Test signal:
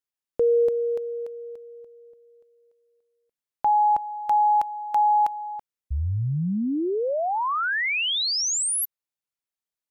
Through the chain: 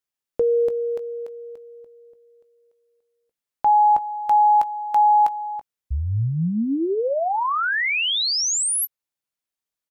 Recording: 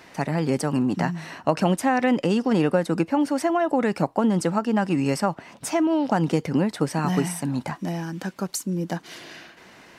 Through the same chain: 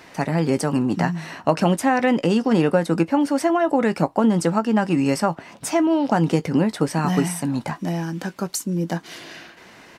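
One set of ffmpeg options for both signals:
-filter_complex "[0:a]asplit=2[a][b];[b]adelay=18,volume=-13dB[c];[a][c]amix=inputs=2:normalize=0,volume=2.5dB"

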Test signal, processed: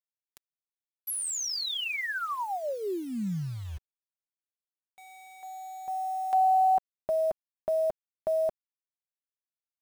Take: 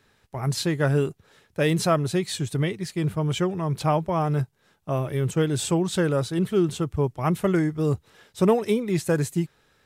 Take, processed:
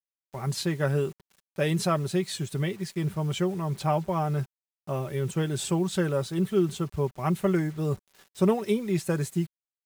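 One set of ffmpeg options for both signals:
-af "acrusher=bits=7:mix=0:aa=0.000001,aecho=1:1:5.2:0.4,volume=-4.5dB"

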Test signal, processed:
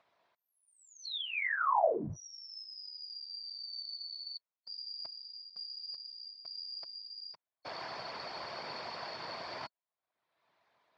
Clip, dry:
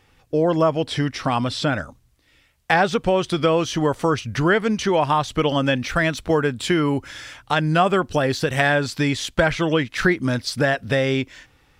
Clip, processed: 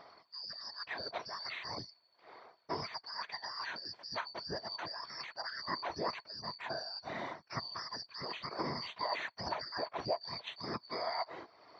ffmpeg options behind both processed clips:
-af "afftfilt=real='real(if(lt(b,272),68*(eq(floor(b/68),0)*1+eq(floor(b/68),1)*2+eq(floor(b/68),2)*3+eq(floor(b/68),3)*0)+mod(b,68),b),0)':imag='imag(if(lt(b,272),68*(eq(floor(b/68),0)*1+eq(floor(b/68),1)*2+eq(floor(b/68),2)*3+eq(floor(b/68),3)*0)+mod(b,68),b),0)':win_size=2048:overlap=0.75,areverse,acompressor=threshold=-28dB:ratio=5,areverse,afftfilt=real='hypot(re,im)*cos(2*PI*random(0))':imag='hypot(re,im)*sin(2*PI*random(1))':win_size=512:overlap=0.75,acompressor=mode=upward:threshold=-49dB:ratio=2.5,highpass=140,equalizer=f=190:t=q:w=4:g=-4,equalizer=f=270:t=q:w=4:g=-5,equalizer=f=660:t=q:w=4:g=9,equalizer=f=990:t=q:w=4:g=8,equalizer=f=2.9k:t=q:w=4:g=-7,lowpass=f=3.5k:w=0.5412,lowpass=f=3.5k:w=1.3066,volume=2dB"

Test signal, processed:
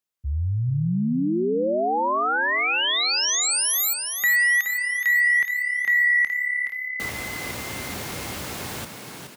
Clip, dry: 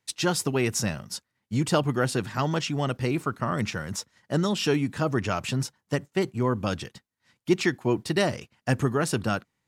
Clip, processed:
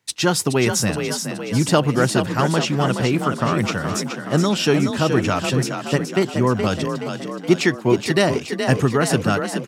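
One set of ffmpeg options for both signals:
-filter_complex "[0:a]highpass=f=64:w=0.5412,highpass=f=64:w=1.3066,asplit=8[a][b][c][d][e][f][g][h];[b]adelay=422,afreqshift=35,volume=-7dB[i];[c]adelay=844,afreqshift=70,volume=-12dB[j];[d]adelay=1266,afreqshift=105,volume=-17.1dB[k];[e]adelay=1688,afreqshift=140,volume=-22.1dB[l];[f]adelay=2110,afreqshift=175,volume=-27.1dB[m];[g]adelay=2532,afreqshift=210,volume=-32.2dB[n];[h]adelay=2954,afreqshift=245,volume=-37.2dB[o];[a][i][j][k][l][m][n][o]amix=inputs=8:normalize=0,volume=6.5dB"

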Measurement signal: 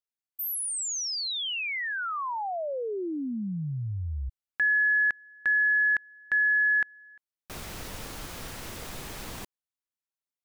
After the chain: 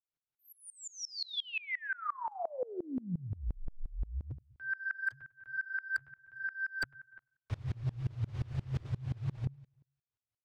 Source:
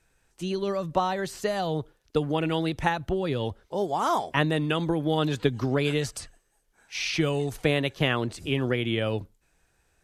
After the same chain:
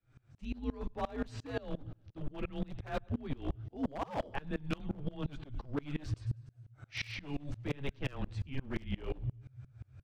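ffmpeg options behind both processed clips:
-filter_complex "[0:a]asubboost=boost=8:cutoff=51,asoftclip=type=tanh:threshold=-11dB,afreqshift=-140,acrossover=split=230|2300[a][b][c];[a]acompressor=threshold=-29dB:ratio=6:attack=29:release=60:knee=2.83:detection=peak[d];[d][b][c]amix=inputs=3:normalize=0,flanger=delay=6.1:depth=6.9:regen=-34:speed=0.75:shape=sinusoidal,lowpass=3.9k,lowshelf=f=390:g=9,areverse,acompressor=threshold=-36dB:ratio=12:attack=29:release=146:knee=6:detection=peak,areverse,aecho=1:1:99|198|297|396:0.112|0.0505|0.0227|0.0102,aeval=exprs='0.0282*(abs(mod(val(0)/0.0282+3,4)-2)-1)':c=same,aeval=exprs='val(0)*pow(10,-27*if(lt(mod(-5.7*n/s,1),2*abs(-5.7)/1000),1-mod(-5.7*n/s,1)/(2*abs(-5.7)/1000),(mod(-5.7*n/s,1)-2*abs(-5.7)/1000)/(1-2*abs(-5.7)/1000))/20)':c=same,volume=7.5dB"

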